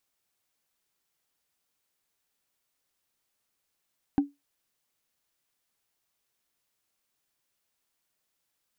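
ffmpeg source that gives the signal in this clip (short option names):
-f lavfi -i "aevalsrc='0.168*pow(10,-3*t/0.19)*sin(2*PI*284*t)+0.0473*pow(10,-3*t/0.056)*sin(2*PI*783*t)+0.0133*pow(10,-3*t/0.025)*sin(2*PI*1534.7*t)+0.00376*pow(10,-3*t/0.014)*sin(2*PI*2537*t)+0.00106*pow(10,-3*t/0.008)*sin(2*PI*3788.6*t)':d=0.45:s=44100"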